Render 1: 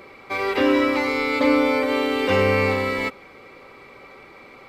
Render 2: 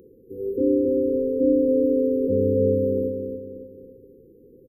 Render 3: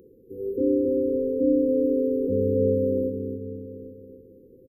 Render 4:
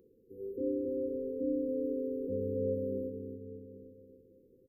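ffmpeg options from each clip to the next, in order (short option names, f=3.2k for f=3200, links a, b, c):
-filter_complex "[0:a]asplit=2[a][b];[b]adelay=275,lowpass=f=4.7k:p=1,volume=-5.5dB,asplit=2[c][d];[d]adelay=275,lowpass=f=4.7k:p=1,volume=0.42,asplit=2[e][f];[f]adelay=275,lowpass=f=4.7k:p=1,volume=0.42,asplit=2[g][h];[h]adelay=275,lowpass=f=4.7k:p=1,volume=0.42,asplit=2[i][j];[j]adelay=275,lowpass=f=4.7k:p=1,volume=0.42[k];[a][c][e][g][i][k]amix=inputs=6:normalize=0,acrossover=split=4400[l][m];[m]acompressor=threshold=-50dB:ratio=4:attack=1:release=60[n];[l][n]amix=inputs=2:normalize=0,afftfilt=real='re*(1-between(b*sr/4096,530,11000))':imag='im*(1-between(b*sr/4096,530,11000))':win_size=4096:overlap=0.75,volume=-1.5dB"
-filter_complex "[0:a]asplit=2[a][b];[b]adelay=816.3,volume=-13dB,highshelf=f=4k:g=-18.4[c];[a][c]amix=inputs=2:normalize=0,volume=-2dB"
-af "flanger=delay=4.3:depth=1.6:regen=89:speed=0.6:shape=sinusoidal,volume=-7dB"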